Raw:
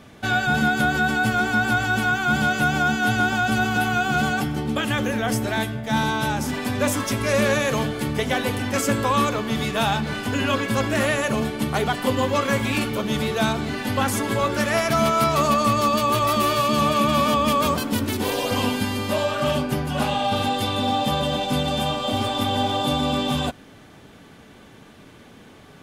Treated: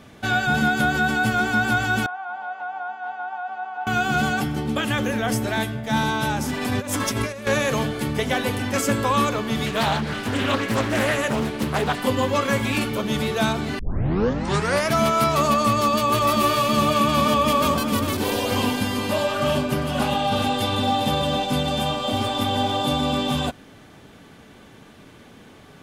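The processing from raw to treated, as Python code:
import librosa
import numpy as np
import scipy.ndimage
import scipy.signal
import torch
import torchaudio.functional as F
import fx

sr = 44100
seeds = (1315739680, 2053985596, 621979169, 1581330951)

y = fx.ladder_bandpass(x, sr, hz=890.0, resonance_pct=75, at=(2.06, 3.87))
y = fx.over_compress(y, sr, threshold_db=-25.0, ratio=-0.5, at=(6.61, 7.47))
y = fx.doppler_dist(y, sr, depth_ms=0.47, at=(9.66, 12.0))
y = fx.echo_single(y, sr, ms=401, db=-8.5, at=(15.72, 21.43))
y = fx.edit(y, sr, fx.tape_start(start_s=13.79, length_s=1.12), tone=tone)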